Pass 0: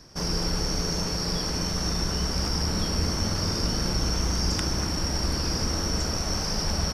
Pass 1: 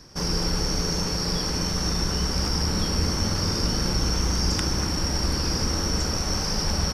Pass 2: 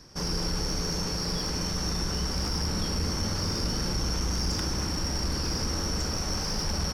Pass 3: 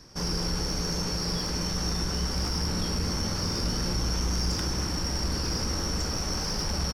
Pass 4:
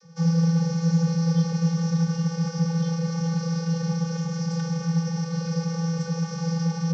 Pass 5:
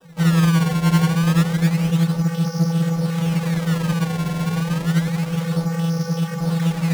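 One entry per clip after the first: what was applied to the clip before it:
notch filter 660 Hz, Q 12; level +2 dB
soft clipping −18 dBFS, distortion −18 dB; level −3 dB
double-tracking delay 17 ms −12 dB
channel vocoder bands 32, square 166 Hz; level +8 dB
sample-and-hold swept by an LFO 20×, swing 160% 0.29 Hz; highs frequency-modulated by the lows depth 0.2 ms; level +5 dB

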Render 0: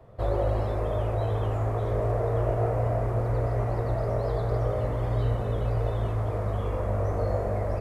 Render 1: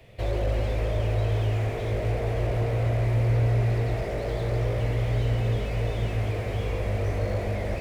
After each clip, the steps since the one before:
high shelf with overshoot 1,700 Hz +12 dB, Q 3
bucket-brigade delay 130 ms, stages 2,048, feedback 84%, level −10 dB
slew-rate limiting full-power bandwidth 24 Hz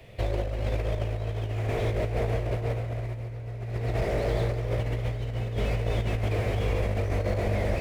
compressor whose output falls as the input rises −27 dBFS, ratio −0.5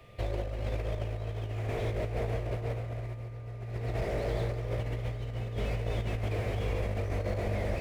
steady tone 1,200 Hz −57 dBFS
level −5 dB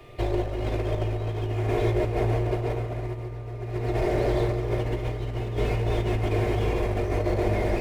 hollow resonant body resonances 360/890 Hz, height 7 dB, ringing for 20 ms
convolution reverb RT60 1.2 s, pre-delay 3 ms, DRR 4.5 dB
level +4.5 dB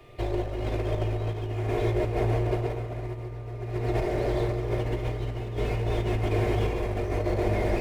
shaped tremolo saw up 0.75 Hz, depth 35%

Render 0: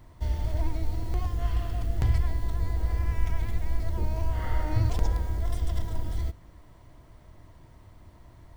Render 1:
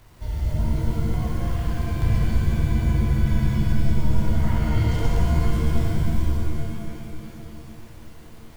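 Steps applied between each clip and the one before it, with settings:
bit reduction 9 bits
reverb with rising layers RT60 2.5 s, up +7 semitones, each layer −2 dB, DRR −3 dB
level −3 dB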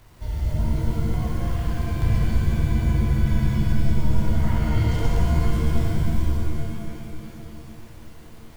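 no processing that can be heard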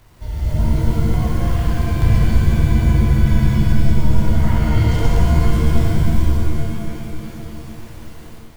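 automatic gain control gain up to 6 dB
level +1.5 dB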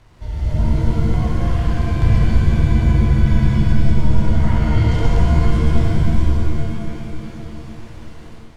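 high-frequency loss of the air 58 metres

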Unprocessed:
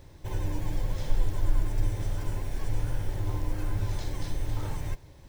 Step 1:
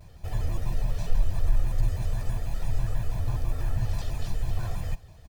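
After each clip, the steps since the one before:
in parallel at −9.5 dB: hard clipping −20.5 dBFS, distortion −13 dB
on the sum: comb filter 1.4 ms, depth 64%
pitch modulation by a square or saw wave square 6.1 Hz, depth 250 cents
level −4 dB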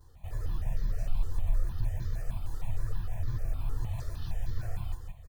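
repeating echo 169 ms, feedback 30%, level −6.5 dB
step-sequenced phaser 6.5 Hz 640–2,700 Hz
level −5 dB

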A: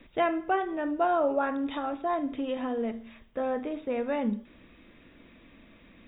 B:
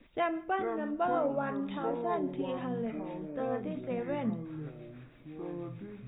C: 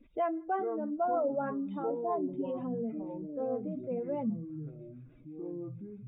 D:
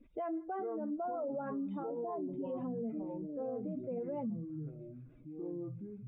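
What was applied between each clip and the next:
two-band tremolo in antiphase 6.3 Hz, depth 50%, crossover 580 Hz; delay with pitch and tempo change per echo 338 ms, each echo −7 semitones, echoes 2, each echo −6 dB; level −3 dB
expanding power law on the bin magnitudes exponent 1.7; notch filter 1,800 Hz, Q 7.3
high-shelf EQ 2,700 Hz −9 dB; brickwall limiter −30.5 dBFS, peak gain reduction 9 dB; level −1 dB

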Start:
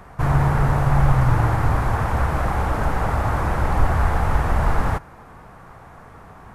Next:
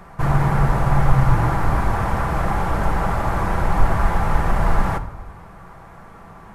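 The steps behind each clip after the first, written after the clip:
convolution reverb RT60 1.0 s, pre-delay 5 ms, DRR 6.5 dB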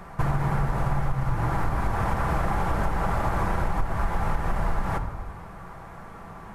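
downward compressor 10 to 1, threshold −20 dBFS, peak gain reduction 14.5 dB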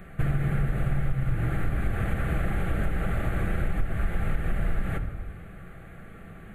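phaser with its sweep stopped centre 2,300 Hz, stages 4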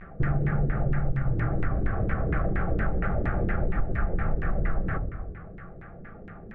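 pitch vibrato 0.35 Hz 42 cents
auto-filter low-pass saw down 4.3 Hz 340–2,100 Hz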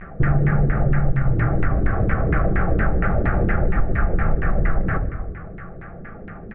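Chebyshev low-pass filter 2,500 Hz, order 2
repeating echo 77 ms, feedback 58%, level −20.5 dB
level +8 dB

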